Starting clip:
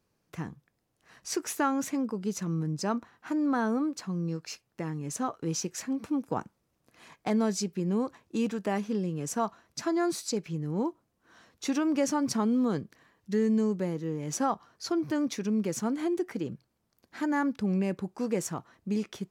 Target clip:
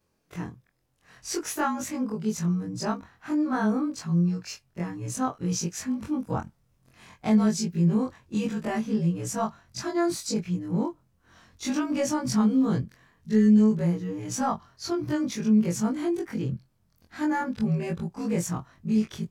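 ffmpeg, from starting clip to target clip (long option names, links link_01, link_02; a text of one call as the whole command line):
ffmpeg -i in.wav -af "afftfilt=real='re':imag='-im':win_size=2048:overlap=0.75,asubboost=boost=4.5:cutoff=150,volume=6.5dB" out.wav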